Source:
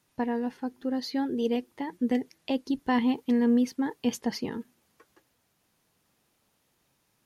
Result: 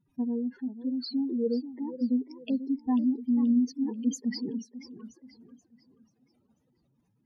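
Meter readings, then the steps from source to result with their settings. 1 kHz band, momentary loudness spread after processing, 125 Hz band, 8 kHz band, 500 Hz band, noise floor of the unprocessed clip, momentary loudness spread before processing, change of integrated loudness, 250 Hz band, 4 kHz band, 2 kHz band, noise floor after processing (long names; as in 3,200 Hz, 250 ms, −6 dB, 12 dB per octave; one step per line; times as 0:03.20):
−12.0 dB, 13 LU, can't be measured, −1.0 dB, −5.5 dB, −73 dBFS, 10 LU, −1.0 dB, 0.0 dB, −4.0 dB, below −10 dB, −73 dBFS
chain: expanding power law on the bin magnitudes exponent 3.4
feedback echo with a swinging delay time 486 ms, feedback 38%, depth 174 cents, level −13 dB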